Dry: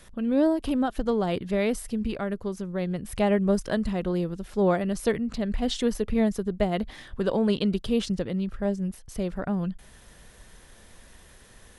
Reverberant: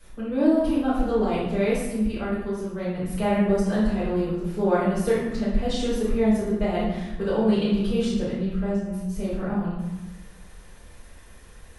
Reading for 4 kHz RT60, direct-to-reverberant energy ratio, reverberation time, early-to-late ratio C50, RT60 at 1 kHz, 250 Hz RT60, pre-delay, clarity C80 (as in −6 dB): 0.70 s, −11.5 dB, 1.1 s, 0.0 dB, 1.2 s, 1.3 s, 4 ms, 3.5 dB